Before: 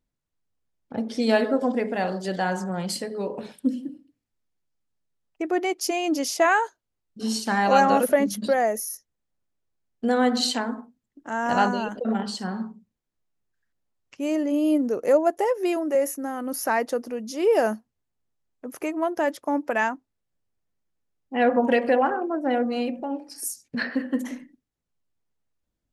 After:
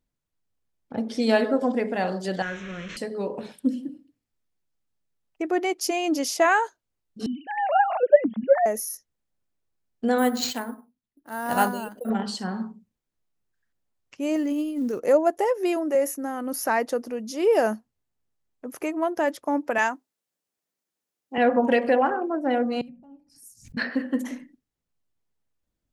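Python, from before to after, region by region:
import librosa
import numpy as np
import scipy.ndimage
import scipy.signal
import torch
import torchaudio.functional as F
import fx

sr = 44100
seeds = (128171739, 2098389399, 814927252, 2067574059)

y = fx.chain(x, sr, fx.delta_mod(bps=32000, step_db=-29.0),
    fx.peak_eq(hz=190.0, db=-7.0, octaves=1.8),
    fx.fixed_phaser(hz=2000.0, stages=4), at=(2.42, 2.97))
y = fx.chain(y, sr, fx.sine_speech(),
    fx.high_shelf(hz=2500.0, db=-8.0), at=(7.26, 8.66))
y = fx.chain(y, sr, fx.resample_bad(factor=4, down='none', up='hold'),
    fx.upward_expand(threshold_db=-38.0, expansion=1.5), at=(10.18, 12.1))
y = fx.chain(y, sr, fx.block_float(bits=7),
    fx.over_compress(threshold_db=-23.0, ratio=-0.5),
    fx.peak_eq(hz=660.0, db=-9.5, octaves=0.95), at=(14.36, 15.0))
y = fx.chain(y, sr, fx.highpass(hz=260.0, slope=12),
    fx.high_shelf(hz=4000.0, db=8.0), at=(19.78, 21.38))
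y = fx.chain(y, sr, fx.curve_eq(hz=(160.0, 380.0, 3900.0, 6800.0), db=(0, -28, -23, -18)),
    fx.pre_swell(db_per_s=100.0), at=(22.81, 23.77))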